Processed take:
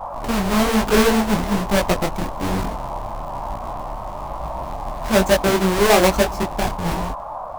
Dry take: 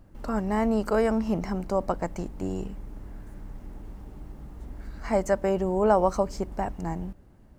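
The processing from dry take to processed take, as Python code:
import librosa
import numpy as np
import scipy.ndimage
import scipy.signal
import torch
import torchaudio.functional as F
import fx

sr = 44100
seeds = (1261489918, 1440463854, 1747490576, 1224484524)

y = fx.halfwave_hold(x, sr)
y = fx.dmg_noise_band(y, sr, seeds[0], low_hz=570.0, high_hz=1100.0, level_db=-34.0)
y = fx.detune_double(y, sr, cents=39)
y = y * librosa.db_to_amplitude(7.0)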